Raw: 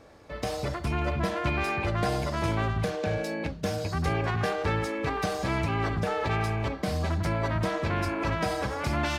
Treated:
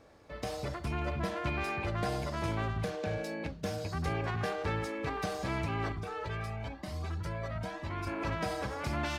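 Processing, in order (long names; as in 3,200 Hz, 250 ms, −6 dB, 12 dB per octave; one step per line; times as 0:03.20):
0:05.92–0:08.07: flanger whose copies keep moving one way rising 1 Hz
level −6 dB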